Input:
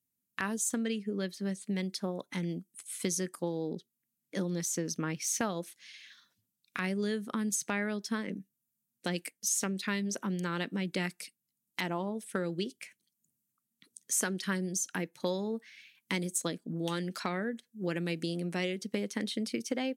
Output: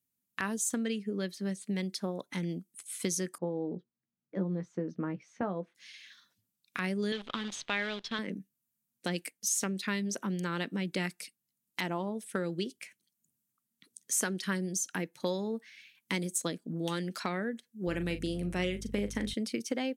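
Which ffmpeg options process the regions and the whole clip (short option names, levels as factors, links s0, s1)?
-filter_complex "[0:a]asettb=1/sr,asplit=3[s0][s1][s2];[s0]atrim=end=3.384[s3];[s1]atrim=start=3.38:end=5.75,asetpts=PTS-STARTPTS,afade=t=in:d=0.004:c=qsin,afade=t=out:st=2.366:d=0.004:c=qsin,lowpass=1100,bandreject=f=270:w=8.8,asplit=2[s4][s5];[s5]adelay=16,volume=0.335[s6];[s4][s6]amix=inputs=2:normalize=0,atrim=end_sample=104517[s7];[s2]atrim=start=5.746[s8];[s3][s7]acrossfade=d=0.004:c1=hsin:c2=qsin[s9];[s9][s8]acrossfade=d=0.004:c1=qsin:c2=hsin,asettb=1/sr,asplit=3[s10][s11][s12];[s10]atrim=end=7.124[s13];[s11]atrim=start=7.12:end=8.19,asetpts=PTS-STARTPTS,afade=t=in:d=0.004:c=qsin,afade=t=out:st=1.066:d=0.004:c=qsin,lowshelf=f=240:g=-11.5,acrusher=bits=8:dc=4:mix=0:aa=0.000001,lowpass=f=3500:t=q:w=3.7[s14];[s12]atrim=start=8.186[s15];[s13][s14]acrossfade=d=0.004:c1=hsin:c2=qsin[s16];[s16][s15]acrossfade=d=0.004:c1=qsin:c2=hsin,asettb=1/sr,asplit=3[s17][s18][s19];[s17]atrim=end=17.874[s20];[s18]atrim=start=17.87:end=19.34,asetpts=PTS-STARTPTS,afade=t=in:d=0.004:c=qsin,afade=t=out:st=1.466:d=0.004:c=qsin,equalizer=f=4500:w=4.4:g=-7,asplit=2[s21][s22];[s22]adelay=39,volume=0.299[s23];[s21][s23]amix=inputs=2:normalize=0,atrim=end_sample=64827,aeval=exprs='val(0)+0.00708*(sin(2*PI*50*n/s)+sin(2*PI*2*50*n/s)/2+sin(2*PI*3*50*n/s)/3+sin(2*PI*4*50*n/s)/4+sin(2*PI*5*50*n/s)/5)':c=same[s24];[s19]atrim=start=19.336[s25];[s20][s24]acrossfade=d=0.004:c1=hsin:c2=qsin[s26];[s26][s25]acrossfade=d=0.004:c1=qsin:c2=hsin"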